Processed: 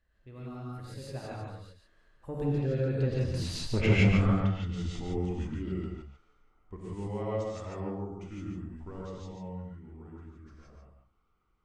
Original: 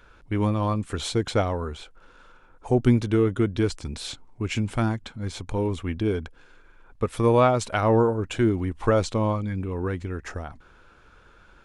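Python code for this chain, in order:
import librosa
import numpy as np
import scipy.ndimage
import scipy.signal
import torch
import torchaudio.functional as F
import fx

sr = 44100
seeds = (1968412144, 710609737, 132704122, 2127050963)

y = fx.doppler_pass(x, sr, speed_mps=54, closest_m=9.4, pass_at_s=3.79)
y = fx.env_lowpass_down(y, sr, base_hz=2900.0, full_db=-32.5)
y = fx.low_shelf(y, sr, hz=210.0, db=8.5)
y = 10.0 ** (-23.5 / 20.0) * np.tanh(y / 10.0 ** (-23.5 / 20.0))
y = y + 10.0 ** (-6.0 / 20.0) * np.pad(y, (int(143 * sr / 1000.0), 0))[:len(y)]
y = fx.rev_gated(y, sr, seeds[0], gate_ms=190, shape='rising', drr_db=-5.5)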